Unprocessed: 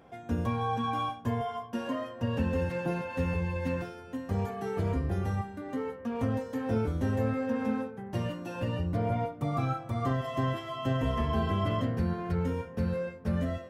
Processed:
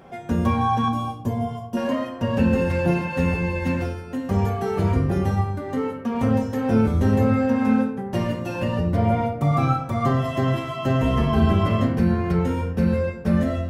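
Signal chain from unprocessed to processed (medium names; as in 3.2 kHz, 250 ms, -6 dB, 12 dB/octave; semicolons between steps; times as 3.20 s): 0.88–1.77 s: peaking EQ 1.8 kHz -13 dB 1.9 oct; on a send: reverberation RT60 0.55 s, pre-delay 5 ms, DRR 5 dB; on the sum: trim +8.5 dB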